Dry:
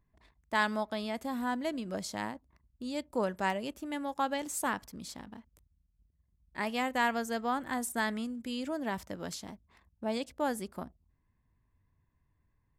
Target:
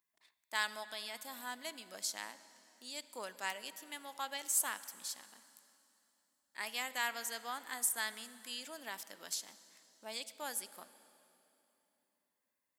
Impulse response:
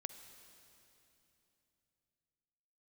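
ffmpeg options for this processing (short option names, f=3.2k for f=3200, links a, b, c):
-filter_complex "[0:a]aderivative,asplit=2[a][b];[b]highpass=190[c];[1:a]atrim=start_sample=2205,lowshelf=f=180:g=7.5,highshelf=f=7.1k:g=-9.5[d];[c][d]afir=irnorm=-1:irlink=0,volume=6dB[e];[a][e]amix=inputs=2:normalize=0"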